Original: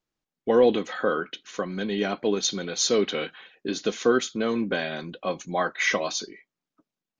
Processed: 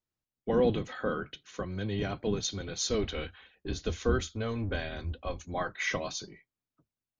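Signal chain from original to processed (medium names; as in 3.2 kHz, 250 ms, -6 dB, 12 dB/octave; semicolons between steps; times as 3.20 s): octave divider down 1 oct, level +2 dB; 2.90–5.46 s: resonant low shelf 100 Hz +7.5 dB, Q 3; trim -8 dB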